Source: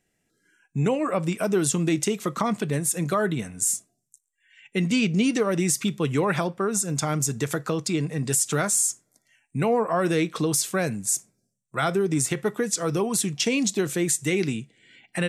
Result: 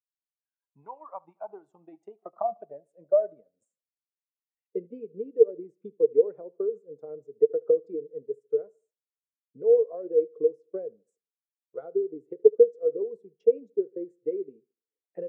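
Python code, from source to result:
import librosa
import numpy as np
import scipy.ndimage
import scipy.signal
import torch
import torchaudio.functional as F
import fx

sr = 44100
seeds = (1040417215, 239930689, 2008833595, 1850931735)

p1 = fx.rider(x, sr, range_db=10, speed_s=0.5)
p2 = x + F.gain(torch.from_numpy(p1), 3.0).numpy()
p3 = fx.transient(p2, sr, attack_db=8, sustain_db=-4)
p4 = fx.filter_sweep_bandpass(p3, sr, from_hz=930.0, to_hz=460.0, start_s=1.05, end_s=4.43, q=7.8)
p5 = p4 + fx.echo_feedback(p4, sr, ms=74, feedback_pct=47, wet_db=-19, dry=0)
p6 = fx.spectral_expand(p5, sr, expansion=1.5)
y = F.gain(torch.from_numpy(p6), -1.5).numpy()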